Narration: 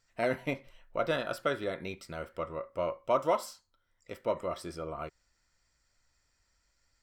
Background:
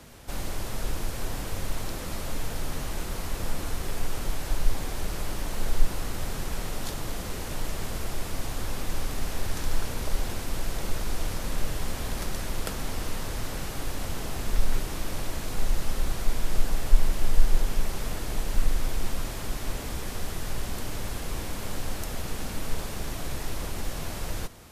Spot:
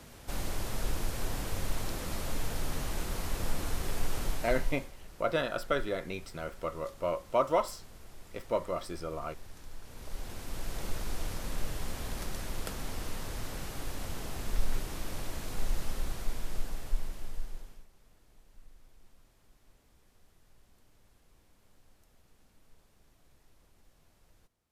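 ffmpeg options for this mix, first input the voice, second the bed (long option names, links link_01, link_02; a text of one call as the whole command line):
ffmpeg -i stem1.wav -i stem2.wav -filter_complex "[0:a]adelay=4250,volume=0.5dB[link_01];[1:a]volume=11dB,afade=type=out:start_time=4.23:duration=0.69:silence=0.141254,afade=type=in:start_time=9.82:duration=1:silence=0.211349,afade=type=out:start_time=15.79:duration=2.08:silence=0.0501187[link_02];[link_01][link_02]amix=inputs=2:normalize=0" out.wav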